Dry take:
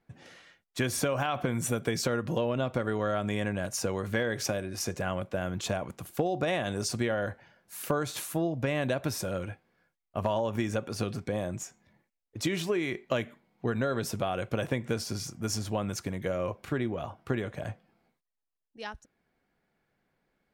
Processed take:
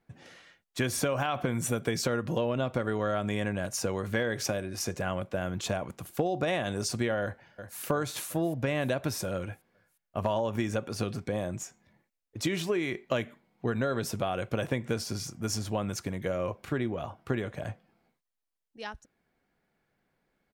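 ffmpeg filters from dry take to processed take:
-filter_complex "[0:a]asplit=2[s0][s1];[s1]afade=t=in:st=7.22:d=0.01,afade=t=out:st=7.81:d=0.01,aecho=0:1:360|720|1080|1440|1800|2160|2520:0.334965|0.200979|0.120588|0.0723525|0.0434115|0.0260469|0.0156281[s2];[s0][s2]amix=inputs=2:normalize=0"

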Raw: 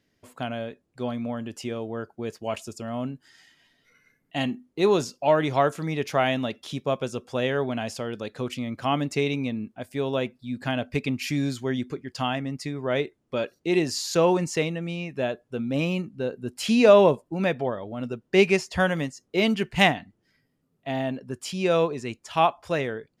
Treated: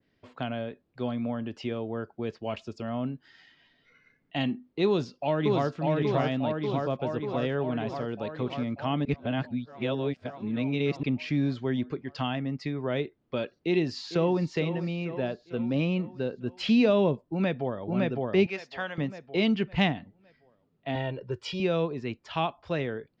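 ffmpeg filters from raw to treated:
-filter_complex "[0:a]asplit=2[s0][s1];[s1]afade=t=in:st=4.86:d=0.01,afade=t=out:st=5.78:d=0.01,aecho=0:1:590|1180|1770|2360|2950|3540|4130|4720|5310|5900|6490:0.841395|0.546907|0.355489|0.231068|0.150194|0.0976263|0.0634571|0.0412471|0.0268106|0.0174269|0.0113275[s2];[s0][s2]amix=inputs=2:normalize=0,asplit=2[s3][s4];[s4]afade=t=in:st=13.53:d=0.01,afade=t=out:st=14.43:d=0.01,aecho=0:1:450|900|1350|1800|2250:0.188365|0.103601|0.0569804|0.0313392|0.0172366[s5];[s3][s5]amix=inputs=2:normalize=0,asplit=2[s6][s7];[s7]afade=t=in:st=17.23:d=0.01,afade=t=out:st=17.89:d=0.01,aecho=0:1:560|1120|1680|2240|2800:0.944061|0.330421|0.115647|0.0404766|0.0141668[s8];[s6][s8]amix=inputs=2:normalize=0,asettb=1/sr,asplit=3[s9][s10][s11];[s9]atrim=end=18.464[s12];[s10]atrim=start=18.46:end=18.98,asetpts=PTS-STARTPTS,afade=t=in:d=0.004:c=qsin,afade=t=out:st=0.516:d=0.004:c=qsin,highpass=f=1400:p=1[s13];[s11]atrim=start=18.976[s14];[s12][s13]acrossfade=d=0.004:c1=hsin:c2=qsin[s15];[s15][s14]acrossfade=d=0.004:c1=qsin:c2=hsin,asettb=1/sr,asplit=3[s16][s17][s18];[s16]atrim=end=20.954[s19];[s17]atrim=start=20.95:end=21.6,asetpts=PTS-STARTPTS,afade=t=in:d=0.004:c=qsin,afade=t=out:st=0.646:d=0.004:c=qsin,aecho=1:1:2.1:0.9,atrim=end_sample=28665[s20];[s18]atrim=start=21.596[s21];[s19][s20]acrossfade=d=0.004:c1=hsin:c2=qsin[s22];[s22][s21]acrossfade=d=0.004:c1=qsin:c2=hsin,asplit=3[s23][s24][s25];[s23]atrim=end=9.052[s26];[s24]atrim=start=9.048:end=11.032,asetpts=PTS-STARTPTS,areverse[s27];[s25]atrim=start=11.028[s28];[s26][s27]acrossfade=d=0.004:c1=hsin:c2=hsin[s29];[s29][s28]acrossfade=d=0.004:c1=hsin:c2=hsin,lowpass=f=4400:w=0.5412,lowpass=f=4400:w=1.3066,acrossover=split=320|3000[s30][s31][s32];[s31]acompressor=threshold=0.02:ratio=2[s33];[s30][s33][s32]amix=inputs=3:normalize=0,adynamicequalizer=threshold=0.00562:dfrequency=1900:dqfactor=0.7:tfrequency=1900:tqfactor=0.7:attack=5:release=100:ratio=0.375:range=3.5:mode=cutabove:tftype=highshelf"

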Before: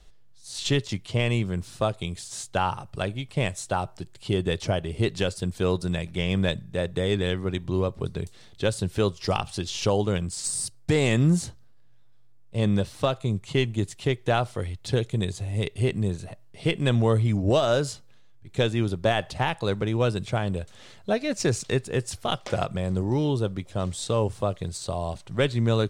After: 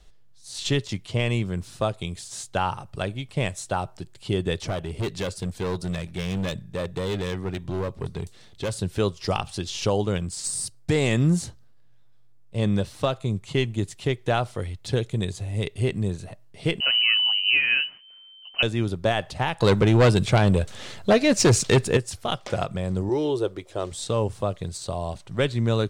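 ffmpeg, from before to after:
-filter_complex "[0:a]asettb=1/sr,asplit=3[s0][s1][s2];[s0]atrim=end=4.674[s3];[s1]atrim=start=4.67:end=8.77,asetpts=PTS-STARTPTS,afade=t=in:d=0.004:c=qsin,afade=t=out:st=4.096:d=0.004:c=qsin,asoftclip=type=hard:threshold=0.0668[s4];[s2]atrim=start=8.766[s5];[s3][s4]acrossfade=d=0.004:c1=hsin:c2=qsin[s6];[s6][s5]acrossfade=d=0.004:c1=qsin:c2=hsin,asettb=1/sr,asplit=3[s7][s8][s9];[s7]atrim=end=16.804[s10];[s8]atrim=start=16.8:end=18.63,asetpts=PTS-STARTPTS,afade=t=in:d=0.004:c=qsin,afade=t=out:st=1.826:d=0.004:c=qsin,lowpass=f=2600:t=q:w=0.5098,lowpass=f=2600:t=q:w=0.6013,lowpass=f=2600:t=q:w=0.9,lowpass=f=2600:t=q:w=2.563,afreqshift=-3100[s11];[s9]atrim=start=18.626[s12];[s10][s11]acrossfade=d=0.004:c1=hsin:c2=qsin[s13];[s13][s12]acrossfade=d=0.004:c1=qsin:c2=hsin,asettb=1/sr,asplit=3[s14][s15][s16];[s14]atrim=end=19.604[s17];[s15]atrim=start=19.6:end=21.97,asetpts=PTS-STARTPTS,afade=t=in:d=0.004:c=qsin,afade=t=out:st=2.366:d=0.004:c=qsin,aeval=exprs='0.266*sin(PI/2*2*val(0)/0.266)':c=same[s18];[s16]atrim=start=21.966[s19];[s17][s18]acrossfade=d=0.004:c1=hsin:c2=qsin[s20];[s20][s19]acrossfade=d=0.004:c1=qsin:c2=hsin,asettb=1/sr,asplit=3[s21][s22][s23];[s21]atrim=end=23.094[s24];[s22]atrim=start=23.09:end=23.92,asetpts=PTS-STARTPTS,afade=t=in:d=0.004:c=qsin,afade=t=out:st=0.826:d=0.004:c=qsin,lowshelf=f=280:t=q:w=3:g=-7.5[s25];[s23]atrim=start=23.916[s26];[s24][s25]acrossfade=d=0.004:c1=hsin:c2=qsin[s27];[s27][s26]acrossfade=d=0.004:c1=qsin:c2=hsin"

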